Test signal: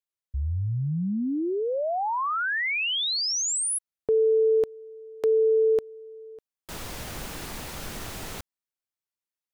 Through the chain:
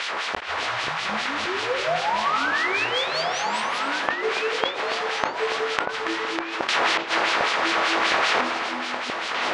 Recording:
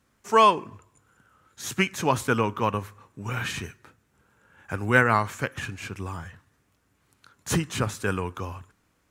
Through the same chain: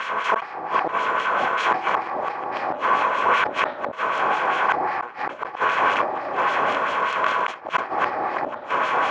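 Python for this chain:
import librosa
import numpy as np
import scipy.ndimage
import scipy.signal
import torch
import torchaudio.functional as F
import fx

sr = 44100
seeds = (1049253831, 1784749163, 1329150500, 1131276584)

p1 = fx.bin_compress(x, sr, power=0.2)
p2 = fx.low_shelf(p1, sr, hz=300.0, db=-11.0)
p3 = fx.filter_lfo_bandpass(p2, sr, shape='sine', hz=5.1, low_hz=710.0, high_hz=4000.0, q=0.89)
p4 = fx.high_shelf(p3, sr, hz=3600.0, db=-6.5)
p5 = fx.rider(p4, sr, range_db=4, speed_s=2.0)
p6 = 10.0 ** (-1.0 / 20.0) * np.tanh(p5 / 10.0 ** (-1.0 / 20.0))
p7 = scipy.signal.sosfilt(scipy.signal.butter(2, 5100.0, 'lowpass', fs=sr, output='sos'), p6)
p8 = p7 + fx.echo_single(p7, sr, ms=280, db=-11.5, dry=0)
p9 = fx.rev_fdn(p8, sr, rt60_s=1.7, lf_ratio=1.0, hf_ratio=0.35, size_ms=83.0, drr_db=4.5)
p10 = fx.gate_flip(p9, sr, shuts_db=-8.0, range_db=-36)
p11 = fx.echo_pitch(p10, sr, ms=418, semitones=-5, count=2, db_per_echo=-6.0)
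y = fx.sustainer(p11, sr, db_per_s=140.0)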